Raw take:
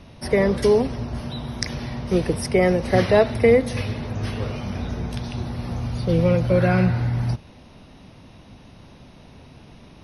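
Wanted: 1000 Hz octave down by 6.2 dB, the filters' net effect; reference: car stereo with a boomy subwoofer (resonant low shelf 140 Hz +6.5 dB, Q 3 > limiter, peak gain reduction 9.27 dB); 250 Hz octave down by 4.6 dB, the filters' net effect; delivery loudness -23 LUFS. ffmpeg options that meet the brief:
-af "lowshelf=f=140:t=q:w=3:g=6.5,equalizer=f=250:t=o:g=-3.5,equalizer=f=1k:t=o:g=-9,volume=-1dB,alimiter=limit=-13.5dB:level=0:latency=1"

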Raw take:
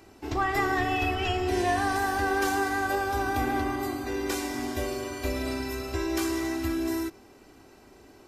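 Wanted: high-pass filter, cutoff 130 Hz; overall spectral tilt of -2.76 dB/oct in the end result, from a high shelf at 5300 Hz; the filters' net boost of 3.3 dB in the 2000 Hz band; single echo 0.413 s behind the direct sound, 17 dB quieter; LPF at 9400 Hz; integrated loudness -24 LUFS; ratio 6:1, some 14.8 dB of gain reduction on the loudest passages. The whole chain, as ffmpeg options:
-af "highpass=130,lowpass=9.4k,equalizer=f=2k:t=o:g=5.5,highshelf=f=5.3k:g=-8.5,acompressor=threshold=-38dB:ratio=6,aecho=1:1:413:0.141,volume=16dB"

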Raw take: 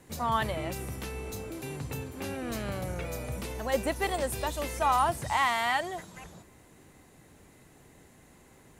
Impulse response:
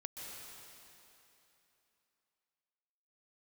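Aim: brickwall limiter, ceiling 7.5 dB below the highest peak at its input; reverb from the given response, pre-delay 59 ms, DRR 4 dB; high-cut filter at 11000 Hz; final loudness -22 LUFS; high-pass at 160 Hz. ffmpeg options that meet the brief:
-filter_complex "[0:a]highpass=160,lowpass=11k,alimiter=limit=-21.5dB:level=0:latency=1,asplit=2[a][b];[1:a]atrim=start_sample=2205,adelay=59[c];[b][c]afir=irnorm=-1:irlink=0,volume=-2.5dB[d];[a][d]amix=inputs=2:normalize=0,volume=11dB"

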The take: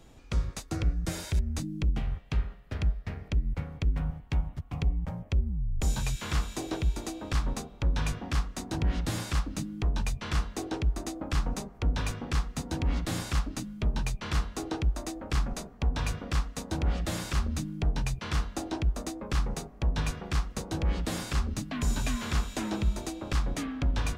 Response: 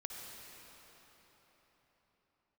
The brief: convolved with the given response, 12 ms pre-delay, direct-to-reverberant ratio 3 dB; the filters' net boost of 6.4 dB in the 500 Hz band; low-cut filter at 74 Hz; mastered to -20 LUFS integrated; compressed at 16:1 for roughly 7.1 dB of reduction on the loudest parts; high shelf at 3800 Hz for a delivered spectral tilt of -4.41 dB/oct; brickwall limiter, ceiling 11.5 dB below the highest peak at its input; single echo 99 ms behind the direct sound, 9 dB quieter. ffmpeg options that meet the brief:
-filter_complex "[0:a]highpass=74,equalizer=f=500:t=o:g=8,highshelf=f=3.8k:g=9,acompressor=threshold=-32dB:ratio=16,alimiter=level_in=5dB:limit=-24dB:level=0:latency=1,volume=-5dB,aecho=1:1:99:0.355,asplit=2[a][b];[1:a]atrim=start_sample=2205,adelay=12[c];[b][c]afir=irnorm=-1:irlink=0,volume=-1.5dB[d];[a][d]amix=inputs=2:normalize=0,volume=17.5dB"

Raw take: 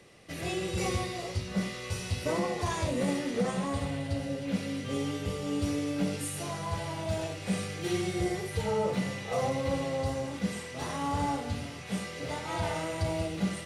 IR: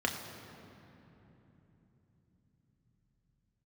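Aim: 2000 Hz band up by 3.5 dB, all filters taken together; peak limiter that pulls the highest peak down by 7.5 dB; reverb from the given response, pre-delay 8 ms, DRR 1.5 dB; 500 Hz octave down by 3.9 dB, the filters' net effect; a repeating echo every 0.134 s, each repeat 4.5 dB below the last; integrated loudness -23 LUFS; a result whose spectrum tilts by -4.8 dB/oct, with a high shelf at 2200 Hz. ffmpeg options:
-filter_complex "[0:a]equalizer=f=500:t=o:g=-5,equalizer=f=2k:t=o:g=6,highshelf=f=2.2k:g=-3.5,alimiter=level_in=3dB:limit=-24dB:level=0:latency=1,volume=-3dB,aecho=1:1:134|268|402|536|670|804|938|1072|1206:0.596|0.357|0.214|0.129|0.0772|0.0463|0.0278|0.0167|0.01,asplit=2[a][b];[1:a]atrim=start_sample=2205,adelay=8[c];[b][c]afir=irnorm=-1:irlink=0,volume=-9dB[d];[a][d]amix=inputs=2:normalize=0,volume=8dB"

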